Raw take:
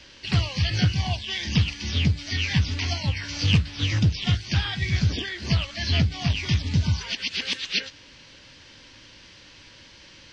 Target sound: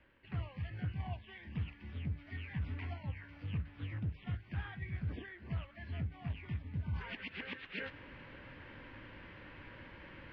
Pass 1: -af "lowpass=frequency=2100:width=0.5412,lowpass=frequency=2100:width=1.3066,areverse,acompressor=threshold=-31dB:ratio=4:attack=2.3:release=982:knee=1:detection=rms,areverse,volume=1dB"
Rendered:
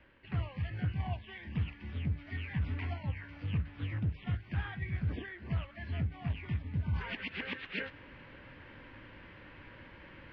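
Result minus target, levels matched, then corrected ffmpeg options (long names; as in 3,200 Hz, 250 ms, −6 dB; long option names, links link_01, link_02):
downward compressor: peak gain reduction −5 dB
-af "lowpass=frequency=2100:width=0.5412,lowpass=frequency=2100:width=1.3066,areverse,acompressor=threshold=-37.5dB:ratio=4:attack=2.3:release=982:knee=1:detection=rms,areverse,volume=1dB"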